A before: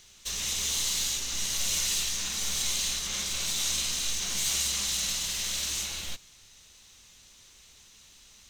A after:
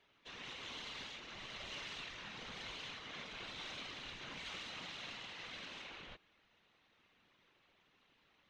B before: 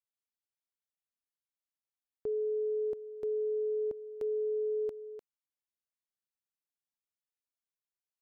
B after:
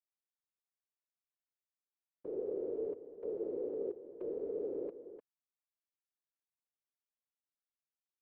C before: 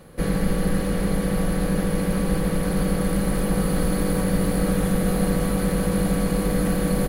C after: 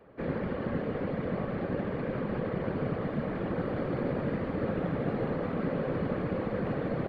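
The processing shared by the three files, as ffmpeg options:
-filter_complex "[0:a]adynamicsmooth=sensitivity=1.5:basefreq=3.3k,acrossover=split=170 3400:gain=0.112 1 0.0794[a][b][c];[a][b][c]amix=inputs=3:normalize=0,afftfilt=real='hypot(re,im)*cos(2*PI*random(0))':imag='hypot(re,im)*sin(2*PI*random(1))':win_size=512:overlap=0.75"

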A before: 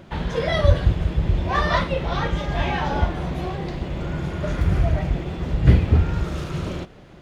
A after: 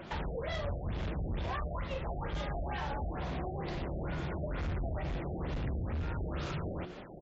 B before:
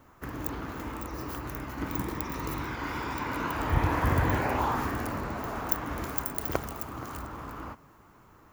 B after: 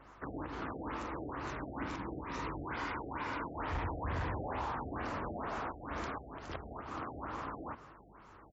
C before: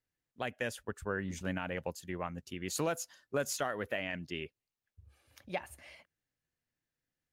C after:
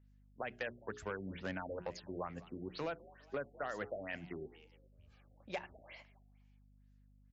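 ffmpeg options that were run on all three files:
-filter_complex "[0:a]lowshelf=f=190:g=-10,bandreject=f=60:t=h:w=6,bandreject=f=120:t=h:w=6,bandreject=f=180:t=h:w=6,bandreject=f=240:t=h:w=6,bandreject=f=300:t=h:w=6,bandreject=f=360:t=h:w=6,bandreject=f=420:t=h:w=6,acrossover=split=100[a][b];[a]alimiter=level_in=2.5dB:limit=-24dB:level=0:latency=1:release=188,volume=-2.5dB[c];[b]acompressor=threshold=-37dB:ratio=6[d];[c][d]amix=inputs=2:normalize=0,asoftclip=type=hard:threshold=-34dB,asplit=4[e][f][g][h];[f]adelay=205,afreqshift=70,volume=-20dB[i];[g]adelay=410,afreqshift=140,volume=-27.1dB[j];[h]adelay=615,afreqshift=210,volume=-34.3dB[k];[e][i][j][k]amix=inputs=4:normalize=0,aeval=exprs='val(0)+0.000501*(sin(2*PI*50*n/s)+sin(2*PI*2*50*n/s)/2+sin(2*PI*3*50*n/s)/3+sin(2*PI*4*50*n/s)/4+sin(2*PI*5*50*n/s)/5)':c=same,afftfilt=real='re*lt(b*sr/1024,760*pow(7800/760,0.5+0.5*sin(2*PI*2.2*pts/sr)))':imag='im*lt(b*sr/1024,760*pow(7800/760,0.5+0.5*sin(2*PI*2.2*pts/sr)))':win_size=1024:overlap=0.75,volume=2dB"

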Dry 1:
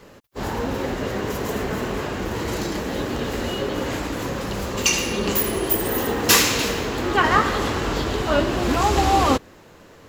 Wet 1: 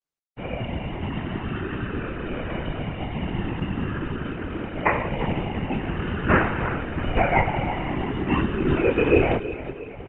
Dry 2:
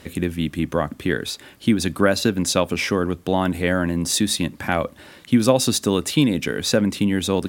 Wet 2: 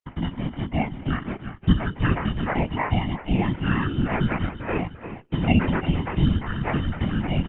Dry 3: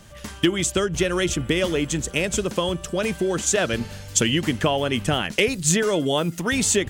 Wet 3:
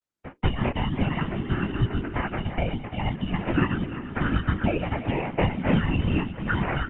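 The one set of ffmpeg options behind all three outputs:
-filter_complex "[0:a]afftfilt=real='re*pow(10,12/40*sin(2*PI*(0.74*log(max(b,1)*sr/1024/100)/log(2)-(0.44)*(pts-256)/sr)))':imag='im*pow(10,12/40*sin(2*PI*(0.74*log(max(b,1)*sr/1024/100)/log(2)-(0.44)*(pts-256)/sr)))':win_size=1024:overlap=0.75,acrusher=samples=12:mix=1:aa=0.000001,aresample=8000,aresample=44100,bandreject=f=1.5k:w=21,asplit=2[a][b];[b]aecho=0:1:343|686|1029|1372|1715:0.251|0.121|0.0579|0.0278|0.0133[c];[a][c]amix=inputs=2:normalize=0,flanger=delay=16.5:depth=7.1:speed=0.59,agate=range=-51dB:threshold=-37dB:ratio=16:detection=peak,afreqshift=-370,afftfilt=real='hypot(re,im)*cos(2*PI*random(0))':imag='hypot(re,im)*sin(2*PI*random(1))':win_size=512:overlap=0.75,volume=5dB" -ar 48000 -c:a libopus -b:a 32k

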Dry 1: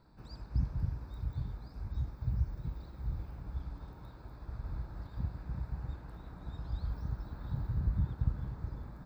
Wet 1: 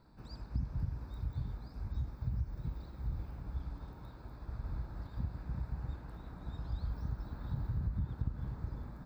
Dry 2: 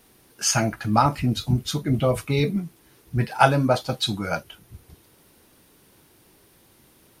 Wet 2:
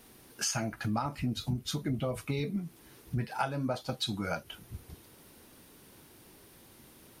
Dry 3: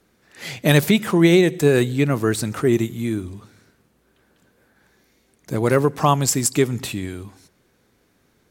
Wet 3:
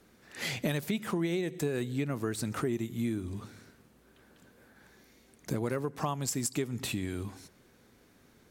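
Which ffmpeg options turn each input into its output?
-af "acompressor=threshold=-31dB:ratio=5,equalizer=f=240:w=5.4:g=3"

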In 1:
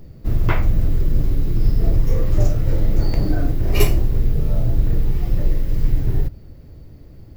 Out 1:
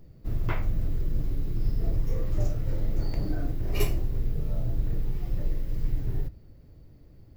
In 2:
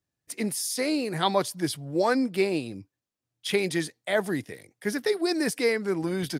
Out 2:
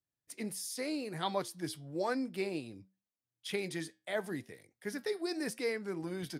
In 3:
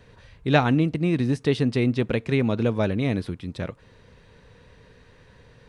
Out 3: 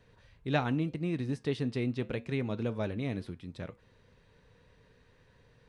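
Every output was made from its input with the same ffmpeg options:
-af "flanger=delay=6.2:depth=1.7:regen=-84:speed=0.87:shape=sinusoidal,volume=-6dB"

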